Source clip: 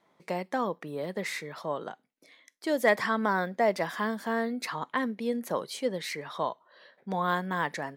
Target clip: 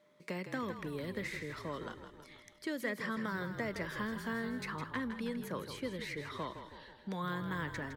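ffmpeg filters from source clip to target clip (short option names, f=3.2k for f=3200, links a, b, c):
-filter_complex "[0:a]equalizer=f=760:w=1.8:g=-13,acrossover=split=450|920|2400[a][b][c][d];[a]acompressor=threshold=-39dB:ratio=4[e];[b]acompressor=threshold=-50dB:ratio=4[f];[c]acompressor=threshold=-42dB:ratio=4[g];[d]acompressor=threshold=-53dB:ratio=4[h];[e][f][g][h]amix=inputs=4:normalize=0,asplit=8[i][j][k][l][m][n][o][p];[j]adelay=161,afreqshift=-42,volume=-9dB[q];[k]adelay=322,afreqshift=-84,volume=-14dB[r];[l]adelay=483,afreqshift=-126,volume=-19.1dB[s];[m]adelay=644,afreqshift=-168,volume=-24.1dB[t];[n]adelay=805,afreqshift=-210,volume=-29.1dB[u];[o]adelay=966,afreqshift=-252,volume=-34.2dB[v];[p]adelay=1127,afreqshift=-294,volume=-39.2dB[w];[i][q][r][s][t][u][v][w]amix=inputs=8:normalize=0,aeval=exprs='val(0)+0.000447*sin(2*PI*600*n/s)':c=same"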